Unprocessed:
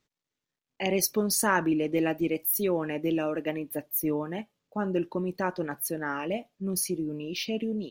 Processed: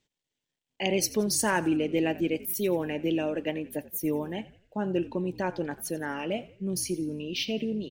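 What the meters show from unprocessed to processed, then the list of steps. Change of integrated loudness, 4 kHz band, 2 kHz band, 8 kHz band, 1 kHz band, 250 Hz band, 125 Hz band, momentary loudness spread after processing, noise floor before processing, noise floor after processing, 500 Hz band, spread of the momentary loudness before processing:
−0.5 dB, +2.5 dB, −1.0 dB, −0.5 dB, −2.0 dB, 0.0 dB, +0.5 dB, 8 LU, below −85 dBFS, below −85 dBFS, 0.0 dB, 8 LU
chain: thirty-one-band graphic EQ 1,250 Hz −11 dB, 3,150 Hz +6 dB, 8,000 Hz +5 dB, 12,500 Hz −12 dB
echo with shifted repeats 87 ms, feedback 43%, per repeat −61 Hz, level −18 dB

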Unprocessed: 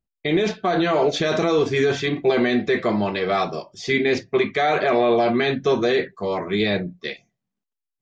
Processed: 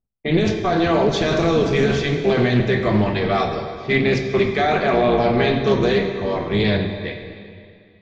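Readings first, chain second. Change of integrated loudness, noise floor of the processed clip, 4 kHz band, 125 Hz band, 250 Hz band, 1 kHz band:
+2.0 dB, −50 dBFS, +1.0 dB, +9.0 dB, +3.0 dB, +1.5 dB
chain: sub-octave generator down 1 octave, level 0 dB
low-pass that shuts in the quiet parts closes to 1,100 Hz, open at −15.5 dBFS
dense smooth reverb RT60 2.3 s, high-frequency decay 0.9×, DRR 4.5 dB
highs frequency-modulated by the lows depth 0.16 ms

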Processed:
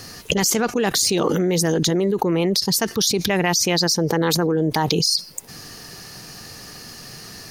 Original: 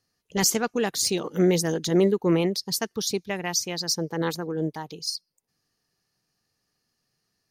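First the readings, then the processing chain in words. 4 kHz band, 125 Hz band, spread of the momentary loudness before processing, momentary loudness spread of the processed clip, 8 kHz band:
+8.5 dB, +6.5 dB, 9 LU, 19 LU, +6.0 dB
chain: envelope flattener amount 100%
level −2 dB

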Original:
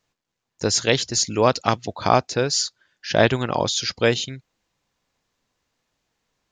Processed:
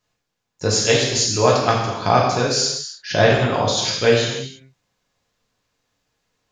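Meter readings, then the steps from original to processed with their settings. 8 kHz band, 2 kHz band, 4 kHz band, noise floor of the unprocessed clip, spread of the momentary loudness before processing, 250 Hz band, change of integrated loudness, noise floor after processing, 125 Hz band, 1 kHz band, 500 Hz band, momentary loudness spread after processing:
+3.0 dB, +3.0 dB, +3.0 dB, −82 dBFS, 8 LU, +1.5 dB, +3.0 dB, −77 dBFS, +5.0 dB, +3.0 dB, +3.5 dB, 8 LU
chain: reverb whose tail is shaped and stops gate 360 ms falling, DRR −4 dB
level −2.5 dB

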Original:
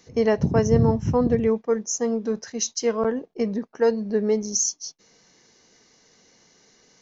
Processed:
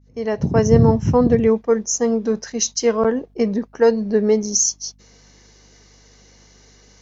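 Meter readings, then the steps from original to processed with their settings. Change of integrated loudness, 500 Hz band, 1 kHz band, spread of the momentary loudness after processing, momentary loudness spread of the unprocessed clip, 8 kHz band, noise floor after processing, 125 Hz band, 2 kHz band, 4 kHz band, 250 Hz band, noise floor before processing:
+5.0 dB, +5.0 dB, +5.0 dB, 8 LU, 8 LU, can't be measured, −52 dBFS, +5.0 dB, +4.0 dB, +5.5 dB, +5.0 dB, −59 dBFS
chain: fade in at the beginning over 0.71 s
mains hum 50 Hz, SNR 34 dB
level +5.5 dB

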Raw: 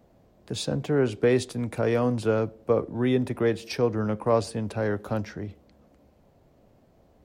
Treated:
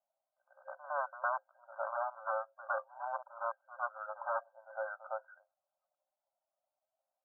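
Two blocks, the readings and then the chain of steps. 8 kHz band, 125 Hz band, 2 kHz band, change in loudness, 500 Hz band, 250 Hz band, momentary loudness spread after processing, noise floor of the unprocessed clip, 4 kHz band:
below −35 dB, below −40 dB, −5.5 dB, −13.0 dB, −17.0 dB, below −40 dB, 8 LU, −60 dBFS, below −40 dB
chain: spectral dynamics exaggerated over time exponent 1.5
wave folding −22.5 dBFS
tilt shelving filter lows −4.5 dB
echo ahead of the sound 109 ms −16.5 dB
brick-wall band-pass 530–1,600 Hz
level −2 dB

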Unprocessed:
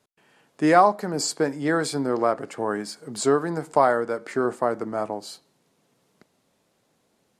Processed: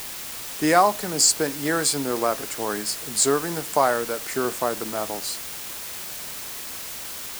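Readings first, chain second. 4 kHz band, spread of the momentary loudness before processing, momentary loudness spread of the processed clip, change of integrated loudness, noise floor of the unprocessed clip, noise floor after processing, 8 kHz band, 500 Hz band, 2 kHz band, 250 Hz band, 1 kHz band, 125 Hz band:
+8.5 dB, 11 LU, 13 LU, 0.0 dB, −69 dBFS, −35 dBFS, +12.0 dB, −2.0 dB, +1.5 dB, −2.0 dB, −1.0 dB, −2.0 dB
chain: first-order pre-emphasis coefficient 0.8
in parallel at −7 dB: bit-depth reduction 6 bits, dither triangular
on the sum: level +8.5 dB

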